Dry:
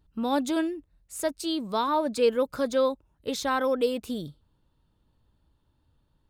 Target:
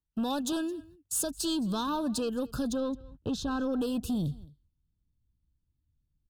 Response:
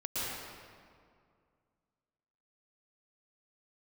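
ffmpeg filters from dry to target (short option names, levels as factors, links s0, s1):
-filter_complex "[0:a]asettb=1/sr,asplit=3[s0][s1][s2];[s0]atrim=end=0.524[s3];[s1]atrim=start=0.52:end=1.24,asetpts=PTS-STARTPTS,afade=t=in:d=0.004:c=qsin,afade=t=out:st=0.716:d=0.004:c=qsin,highpass=f=66:w=0.5412,highpass=f=66:w=1.3066[s4];[s2]atrim=start=1.236[s5];[s3][s4]acrossfade=d=0.004:c1=hsin:c2=qsin[s6];[s6][s5]acrossfade=d=0.004:c1=qsin:c2=hsin,asplit=3[s7][s8][s9];[s7]afade=t=out:st=2.72:d=0.02[s10];[s8]aemphasis=mode=reproduction:type=75fm,afade=t=in:st=2.72:d=0.02,afade=t=out:st=3.72:d=0.02[s11];[s9]afade=t=in:st=3.72:d=0.02[s12];[s10][s11][s12]amix=inputs=3:normalize=0,agate=range=0.0316:threshold=0.00178:ratio=16:detection=peak,asubboost=boost=9:cutoff=230,asplit=2[s13][s14];[s14]acompressor=threshold=0.02:ratio=6,volume=0.841[s15];[s13][s15]amix=inputs=2:normalize=0,alimiter=limit=0.0891:level=0:latency=1:release=467,acrossover=split=100|3200[s16][s17][s18];[s18]acontrast=73[s19];[s16][s17][s19]amix=inputs=3:normalize=0,asoftclip=type=tanh:threshold=0.0596,asuperstop=centerf=2100:order=20:qfactor=2.7,aecho=1:1:217:0.075"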